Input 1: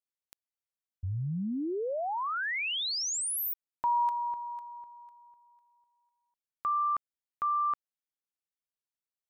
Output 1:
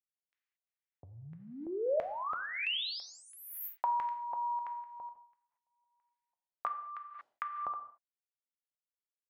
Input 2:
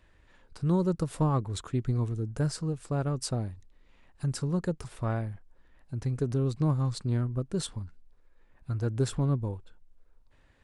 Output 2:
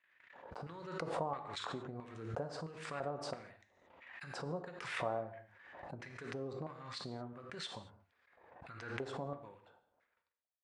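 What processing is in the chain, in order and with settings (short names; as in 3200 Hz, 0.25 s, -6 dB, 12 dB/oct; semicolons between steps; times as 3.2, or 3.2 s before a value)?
LPF 8800 Hz 12 dB/oct; gate -54 dBFS, range -49 dB; HPF 84 Hz; dynamic EQ 4300 Hz, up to +4 dB, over -49 dBFS, Q 1.1; compressor 6:1, threshold -38 dBFS; LFO band-pass square 1.5 Hz 700–2000 Hz; non-linear reverb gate 0.25 s falling, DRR 6.5 dB; backwards sustainer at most 49 dB/s; gain +11 dB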